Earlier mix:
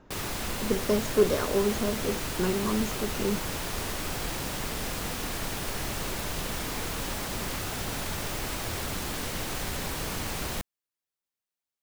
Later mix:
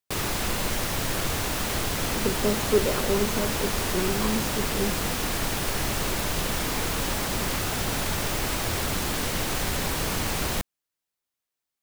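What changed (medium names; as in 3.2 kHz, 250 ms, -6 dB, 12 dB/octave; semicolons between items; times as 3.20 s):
speech: entry +1.55 s; background +5.5 dB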